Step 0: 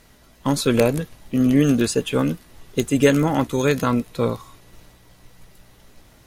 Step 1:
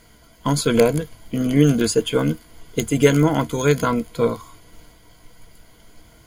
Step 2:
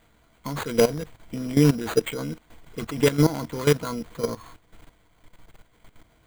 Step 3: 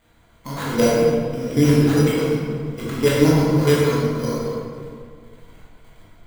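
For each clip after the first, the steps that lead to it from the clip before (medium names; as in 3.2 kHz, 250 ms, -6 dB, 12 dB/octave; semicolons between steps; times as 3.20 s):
rippled EQ curve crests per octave 1.8, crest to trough 10 dB
sample-rate reducer 5.4 kHz, jitter 0%; level held to a coarse grid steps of 15 dB
reverberation RT60 2.0 s, pre-delay 14 ms, DRR -7 dB; trim -2.5 dB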